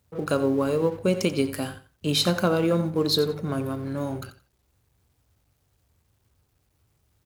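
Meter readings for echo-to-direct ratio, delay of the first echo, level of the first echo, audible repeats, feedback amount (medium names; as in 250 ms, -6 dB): -14.0 dB, 88 ms, -14.0 dB, 2, 21%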